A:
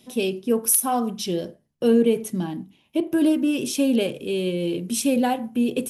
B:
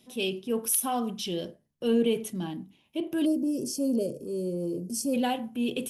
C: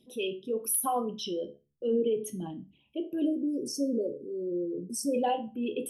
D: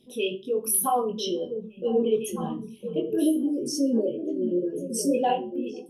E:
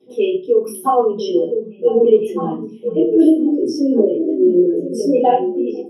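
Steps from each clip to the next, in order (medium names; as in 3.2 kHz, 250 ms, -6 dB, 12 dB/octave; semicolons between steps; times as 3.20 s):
time-frequency box 3.26–5.14 s, 700–4300 Hz -26 dB; dynamic bell 3.1 kHz, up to +8 dB, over -51 dBFS, Q 2.4; transient shaper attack -4 dB, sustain +2 dB; trim -6 dB
resonances exaggerated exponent 2; dynamic bell 960 Hz, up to +5 dB, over -41 dBFS, Q 1.1; feedback comb 71 Hz, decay 0.28 s, harmonics all, mix 70%; trim +3 dB
fade out at the end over 0.68 s; chorus 2.1 Hz, delay 18.5 ms, depth 4.7 ms; on a send: repeats whose band climbs or falls 503 ms, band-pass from 170 Hz, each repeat 1.4 oct, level -4 dB; on the sum: trim +8 dB
reverberation RT60 0.25 s, pre-delay 3 ms, DRR -6 dB; trim -12 dB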